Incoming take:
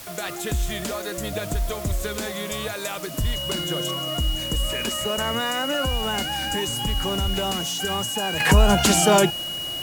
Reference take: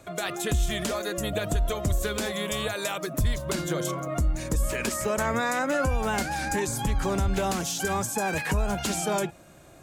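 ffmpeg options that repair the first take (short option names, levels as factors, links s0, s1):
-af "bandreject=f=2900:w=30,afwtdn=0.01,asetnsamples=n=441:p=0,asendcmd='8.4 volume volume -10.5dB',volume=1"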